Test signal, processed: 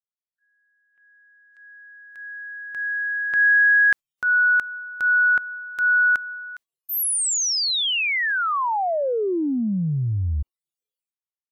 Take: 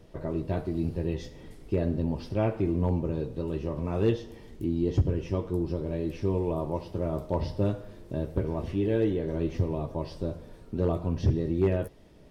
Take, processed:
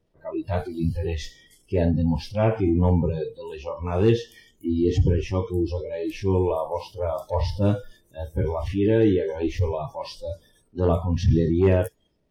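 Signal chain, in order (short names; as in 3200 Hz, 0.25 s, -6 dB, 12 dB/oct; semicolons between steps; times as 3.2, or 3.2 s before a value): transient shaper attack -6 dB, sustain +3 dB; spectral noise reduction 25 dB; gain +8 dB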